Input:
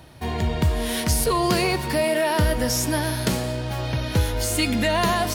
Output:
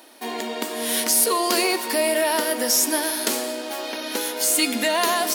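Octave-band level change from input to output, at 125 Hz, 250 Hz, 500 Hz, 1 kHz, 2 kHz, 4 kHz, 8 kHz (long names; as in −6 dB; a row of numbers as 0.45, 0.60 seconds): below −30 dB, −3.0 dB, 0.0 dB, +0.5 dB, +1.0 dB, +3.5 dB, +7.0 dB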